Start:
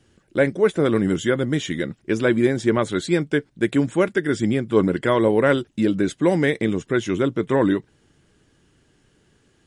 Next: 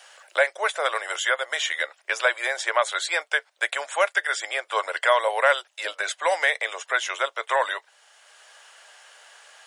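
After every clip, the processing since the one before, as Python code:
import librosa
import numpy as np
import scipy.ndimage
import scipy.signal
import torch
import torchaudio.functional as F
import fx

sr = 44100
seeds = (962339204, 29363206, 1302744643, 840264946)

y = scipy.signal.sosfilt(scipy.signal.butter(8, 600.0, 'highpass', fs=sr, output='sos'), x)
y = fx.band_squash(y, sr, depth_pct=40)
y = F.gain(torch.from_numpy(y), 5.0).numpy()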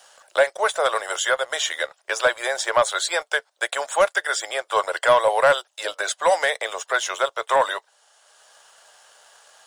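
y = fx.peak_eq(x, sr, hz=2200.0, db=-10.0, octaves=1.0)
y = fx.leveller(y, sr, passes=1)
y = F.gain(torch.from_numpy(y), 2.5).numpy()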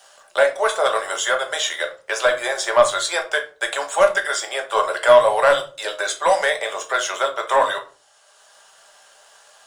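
y = fx.room_shoebox(x, sr, seeds[0], volume_m3=220.0, walls='furnished', distance_m=1.2)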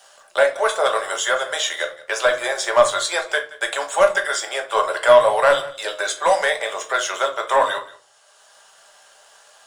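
y = x + 10.0 ** (-19.0 / 20.0) * np.pad(x, (int(176 * sr / 1000.0), 0))[:len(x)]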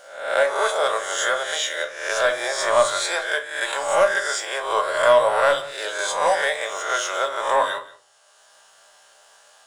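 y = fx.spec_swells(x, sr, rise_s=0.7)
y = F.gain(torch.from_numpy(y), -4.5).numpy()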